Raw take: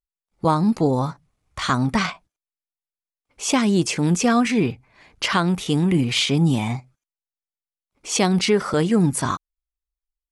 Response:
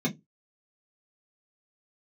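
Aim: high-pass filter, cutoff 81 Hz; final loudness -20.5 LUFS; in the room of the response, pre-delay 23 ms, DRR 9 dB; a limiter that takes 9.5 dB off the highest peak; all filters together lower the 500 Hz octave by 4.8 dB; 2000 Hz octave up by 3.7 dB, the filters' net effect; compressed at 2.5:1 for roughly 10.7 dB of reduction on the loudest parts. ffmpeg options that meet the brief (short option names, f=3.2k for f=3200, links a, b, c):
-filter_complex "[0:a]highpass=81,equalizer=f=500:t=o:g=-6.5,equalizer=f=2k:t=o:g=5,acompressor=threshold=-32dB:ratio=2.5,alimiter=level_in=2dB:limit=-24dB:level=0:latency=1,volume=-2dB,asplit=2[a][b];[1:a]atrim=start_sample=2205,adelay=23[c];[b][c]afir=irnorm=-1:irlink=0,volume=-16.5dB[d];[a][d]amix=inputs=2:normalize=0,volume=9.5dB"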